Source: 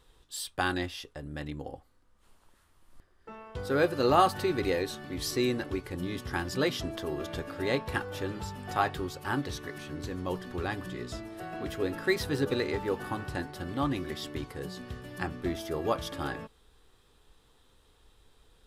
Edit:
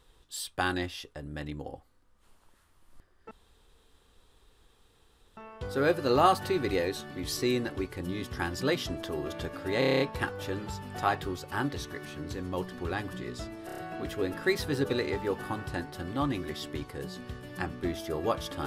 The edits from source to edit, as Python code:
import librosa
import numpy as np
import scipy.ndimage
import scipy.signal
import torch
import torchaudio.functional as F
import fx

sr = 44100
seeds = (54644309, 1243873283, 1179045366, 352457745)

y = fx.edit(x, sr, fx.insert_room_tone(at_s=3.31, length_s=2.06),
    fx.stutter(start_s=7.73, slice_s=0.03, count=8),
    fx.stutter(start_s=11.39, slice_s=0.03, count=5), tone=tone)